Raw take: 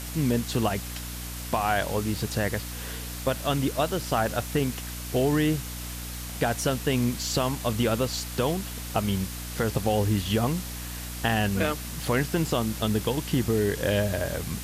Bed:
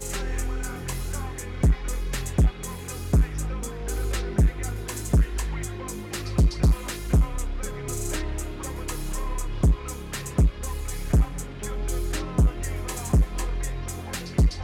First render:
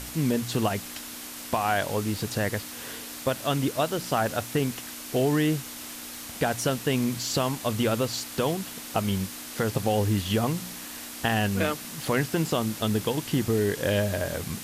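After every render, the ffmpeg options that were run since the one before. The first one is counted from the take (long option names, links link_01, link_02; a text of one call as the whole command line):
ffmpeg -i in.wav -af "bandreject=frequency=60:width_type=h:width=4,bandreject=frequency=120:width_type=h:width=4,bandreject=frequency=180:width_type=h:width=4" out.wav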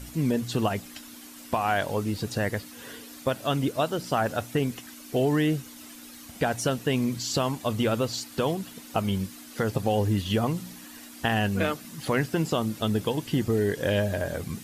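ffmpeg -i in.wav -af "afftdn=noise_reduction=10:noise_floor=-40" out.wav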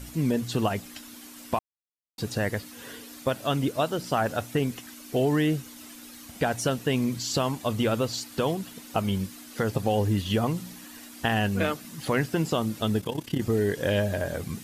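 ffmpeg -i in.wav -filter_complex "[0:a]asplit=3[link_01][link_02][link_03];[link_01]afade=type=out:start_time=12.99:duration=0.02[link_04];[link_02]tremolo=f=33:d=0.788,afade=type=in:start_time=12.99:duration=0.02,afade=type=out:start_time=13.4:duration=0.02[link_05];[link_03]afade=type=in:start_time=13.4:duration=0.02[link_06];[link_04][link_05][link_06]amix=inputs=3:normalize=0,asplit=3[link_07][link_08][link_09];[link_07]atrim=end=1.59,asetpts=PTS-STARTPTS,afade=type=out:start_time=1.586:duration=0.004:curve=hsin[link_10];[link_08]atrim=start=1.59:end=2.18,asetpts=PTS-STARTPTS,volume=0[link_11];[link_09]atrim=start=2.18,asetpts=PTS-STARTPTS,afade=type=in:duration=0.004:curve=hsin[link_12];[link_10][link_11][link_12]concat=n=3:v=0:a=1" out.wav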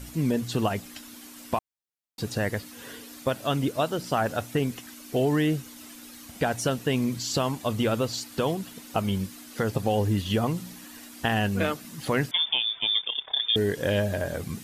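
ffmpeg -i in.wav -filter_complex "[0:a]asettb=1/sr,asplit=3[link_01][link_02][link_03];[link_01]atrim=end=12.314[link_04];[link_02]atrim=start=12.31:end=13.56,asetpts=PTS-STARTPTS,afade=type=in:duration=0.004:curve=qsin,afade=type=out:start_time=1.246:duration=0.004:curve=qsin,lowpass=frequency=3100:width_type=q:width=0.5098,lowpass=frequency=3100:width_type=q:width=0.6013,lowpass=frequency=3100:width_type=q:width=0.9,lowpass=frequency=3100:width_type=q:width=2.563,afreqshift=-3700[link_05];[link_03]atrim=start=13.556[link_06];[link_04][link_05]acrossfade=duration=0.004:curve1=hsin:curve2=qsin[link_07];[link_07][link_06]acrossfade=duration=0.004:curve1=qsin:curve2=hsin" out.wav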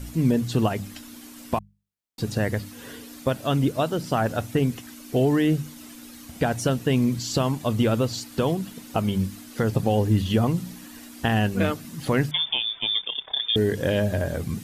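ffmpeg -i in.wav -af "lowshelf=frequency=310:gain=7.5,bandreject=frequency=50:width_type=h:width=6,bandreject=frequency=100:width_type=h:width=6,bandreject=frequency=150:width_type=h:width=6,bandreject=frequency=200:width_type=h:width=6" out.wav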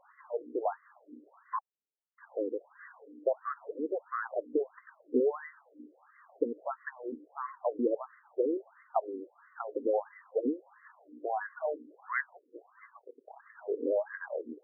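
ffmpeg -i in.wav -filter_complex "[0:a]acrossover=split=540[link_01][link_02];[link_01]aeval=exprs='val(0)*(1-0.5/2+0.5/2*cos(2*PI*6.2*n/s))':channel_layout=same[link_03];[link_02]aeval=exprs='val(0)*(1-0.5/2-0.5/2*cos(2*PI*6.2*n/s))':channel_layout=same[link_04];[link_03][link_04]amix=inputs=2:normalize=0,afftfilt=real='re*between(b*sr/1024,350*pow(1500/350,0.5+0.5*sin(2*PI*1.5*pts/sr))/1.41,350*pow(1500/350,0.5+0.5*sin(2*PI*1.5*pts/sr))*1.41)':imag='im*between(b*sr/1024,350*pow(1500/350,0.5+0.5*sin(2*PI*1.5*pts/sr))/1.41,350*pow(1500/350,0.5+0.5*sin(2*PI*1.5*pts/sr))*1.41)':win_size=1024:overlap=0.75" out.wav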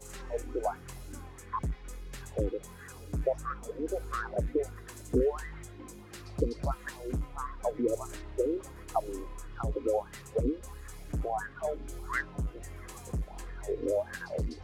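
ffmpeg -i in.wav -i bed.wav -filter_complex "[1:a]volume=-14.5dB[link_01];[0:a][link_01]amix=inputs=2:normalize=0" out.wav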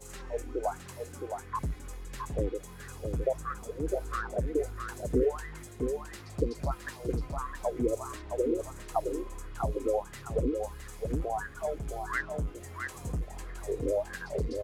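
ffmpeg -i in.wav -af "aecho=1:1:665:0.531" out.wav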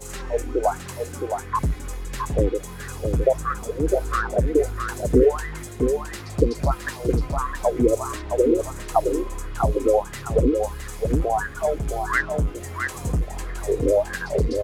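ffmpeg -i in.wav -af "volume=10.5dB" out.wav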